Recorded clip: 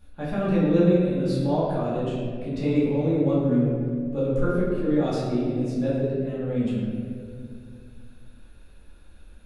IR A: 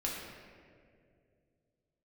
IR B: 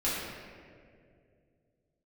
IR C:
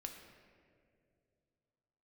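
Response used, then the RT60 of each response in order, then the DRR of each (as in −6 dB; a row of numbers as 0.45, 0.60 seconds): B; 2.3, 2.3, 2.4 seconds; −4.0, −10.0, 3.0 decibels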